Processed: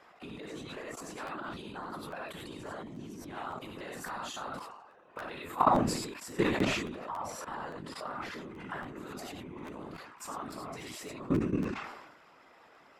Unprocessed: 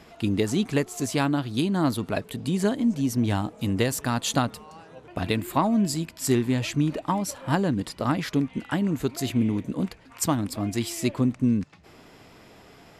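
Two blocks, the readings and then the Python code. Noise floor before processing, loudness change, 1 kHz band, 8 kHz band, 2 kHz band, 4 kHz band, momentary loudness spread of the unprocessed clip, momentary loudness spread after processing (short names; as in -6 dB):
-51 dBFS, -10.5 dB, -3.5 dB, -13.0 dB, -6.0 dB, -9.5 dB, 6 LU, 15 LU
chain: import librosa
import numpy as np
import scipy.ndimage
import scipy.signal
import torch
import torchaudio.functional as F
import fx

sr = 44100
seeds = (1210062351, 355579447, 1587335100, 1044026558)

y = scipy.signal.sosfilt(scipy.signal.butter(2, 310.0, 'highpass', fs=sr, output='sos'), x)
y = fx.high_shelf(y, sr, hz=6900.0, db=-6.5)
y = fx.doubler(y, sr, ms=16.0, db=-11)
y = fx.rev_gated(y, sr, seeds[0], gate_ms=120, shape='rising', drr_db=-2.0)
y = fx.level_steps(y, sr, step_db=19)
y = fx.peak_eq(y, sr, hz=1200.0, db=10.5, octaves=1.5)
y = fx.whisperise(y, sr, seeds[1])
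y = fx.buffer_crackle(y, sr, first_s=0.7, period_s=0.28, block=512, kind='repeat')
y = fx.sustainer(y, sr, db_per_s=50.0)
y = F.gain(torch.from_numpy(y), -7.5).numpy()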